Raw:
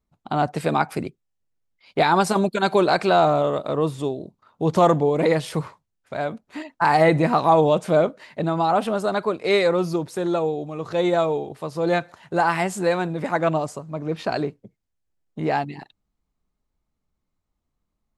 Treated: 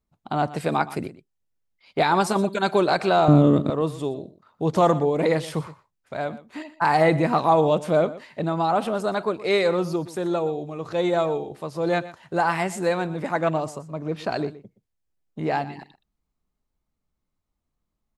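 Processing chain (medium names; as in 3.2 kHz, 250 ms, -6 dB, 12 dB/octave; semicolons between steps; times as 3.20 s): 3.28–3.70 s: resonant low shelf 420 Hz +14 dB, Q 1.5; delay 121 ms -16.5 dB; trim -2 dB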